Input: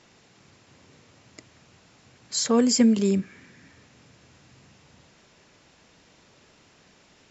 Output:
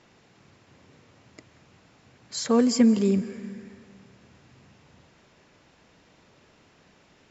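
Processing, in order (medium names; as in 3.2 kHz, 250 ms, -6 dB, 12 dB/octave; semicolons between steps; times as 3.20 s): treble shelf 4.2 kHz -9 dB; plate-style reverb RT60 2.1 s, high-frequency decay 0.85×, pre-delay 120 ms, DRR 15.5 dB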